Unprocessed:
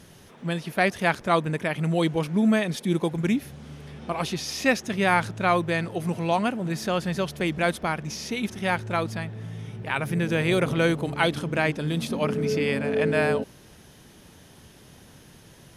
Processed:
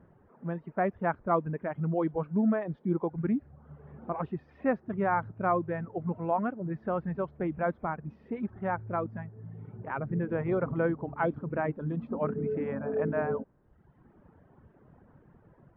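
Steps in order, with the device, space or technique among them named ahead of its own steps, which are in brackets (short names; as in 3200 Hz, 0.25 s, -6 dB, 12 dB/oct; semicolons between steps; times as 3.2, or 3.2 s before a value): reverb removal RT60 1 s; action camera in a waterproof case (LPF 1400 Hz 24 dB/oct; AGC gain up to 3 dB; gain -7 dB; AAC 64 kbps 16000 Hz)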